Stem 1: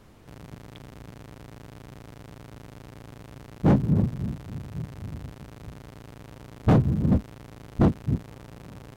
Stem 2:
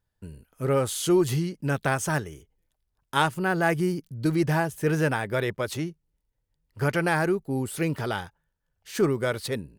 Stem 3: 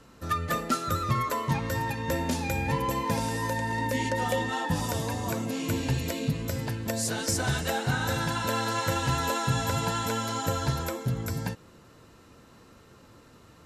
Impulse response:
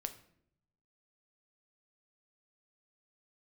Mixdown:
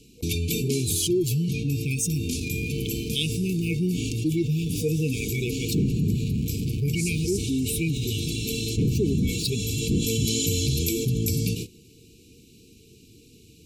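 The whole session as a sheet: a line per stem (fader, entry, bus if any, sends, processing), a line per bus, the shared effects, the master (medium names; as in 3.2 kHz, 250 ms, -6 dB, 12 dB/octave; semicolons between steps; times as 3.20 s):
-9.0 dB, 2.10 s, send -7.5 dB, none
-2.0 dB, 0.00 s, no send, expander on every frequency bin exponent 2
-2.0 dB, 0.00 s, send -22 dB, treble shelf 4.3 kHz +6 dB; auto duck -18 dB, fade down 1.95 s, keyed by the second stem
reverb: on, RT60 0.70 s, pre-delay 7 ms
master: gate -44 dBFS, range -36 dB; FFT band-reject 480–2200 Hz; level flattener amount 70%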